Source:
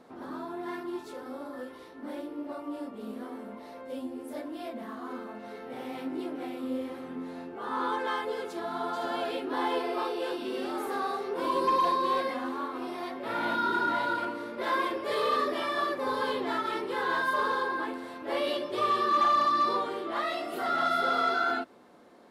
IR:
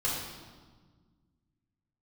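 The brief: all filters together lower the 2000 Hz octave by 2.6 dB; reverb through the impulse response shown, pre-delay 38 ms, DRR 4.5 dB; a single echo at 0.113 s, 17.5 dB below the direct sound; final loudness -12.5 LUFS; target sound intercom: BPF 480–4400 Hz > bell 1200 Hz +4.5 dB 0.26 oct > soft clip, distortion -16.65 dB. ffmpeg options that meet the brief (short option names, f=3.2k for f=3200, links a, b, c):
-filter_complex "[0:a]equalizer=f=2k:t=o:g=-4.5,aecho=1:1:113:0.133,asplit=2[a][b];[1:a]atrim=start_sample=2205,adelay=38[c];[b][c]afir=irnorm=-1:irlink=0,volume=-12dB[d];[a][d]amix=inputs=2:normalize=0,highpass=480,lowpass=4.4k,equalizer=f=1.2k:t=o:w=0.26:g=4.5,asoftclip=threshold=-18dB,volume=16.5dB"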